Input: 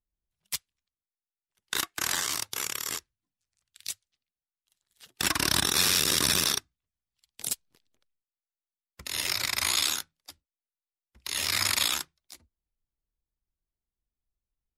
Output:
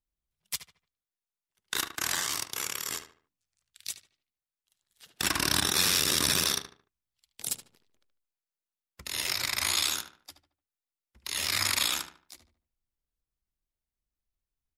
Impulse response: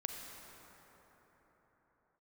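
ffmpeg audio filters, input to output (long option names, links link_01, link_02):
-filter_complex "[0:a]asplit=2[link_01][link_02];[link_02]adelay=74,lowpass=frequency=2700:poles=1,volume=-8.5dB,asplit=2[link_03][link_04];[link_04]adelay=74,lowpass=frequency=2700:poles=1,volume=0.36,asplit=2[link_05][link_06];[link_06]adelay=74,lowpass=frequency=2700:poles=1,volume=0.36,asplit=2[link_07][link_08];[link_08]adelay=74,lowpass=frequency=2700:poles=1,volume=0.36[link_09];[link_01][link_03][link_05][link_07][link_09]amix=inputs=5:normalize=0,volume=-1.5dB"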